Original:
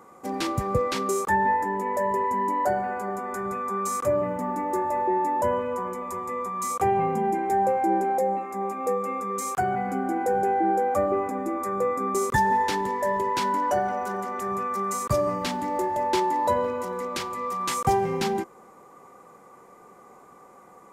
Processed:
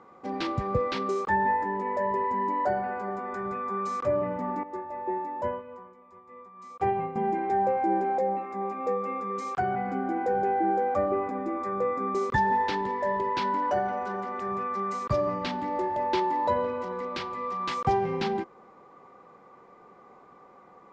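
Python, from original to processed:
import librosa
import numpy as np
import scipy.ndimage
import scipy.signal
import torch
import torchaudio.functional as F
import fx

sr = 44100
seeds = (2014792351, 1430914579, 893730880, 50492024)

y = scipy.signal.sosfilt(scipy.signal.butter(4, 4700.0, 'lowpass', fs=sr, output='sos'), x)
y = fx.upward_expand(y, sr, threshold_db=-33.0, expansion=2.5, at=(4.63, 7.16))
y = F.gain(torch.from_numpy(y), -2.5).numpy()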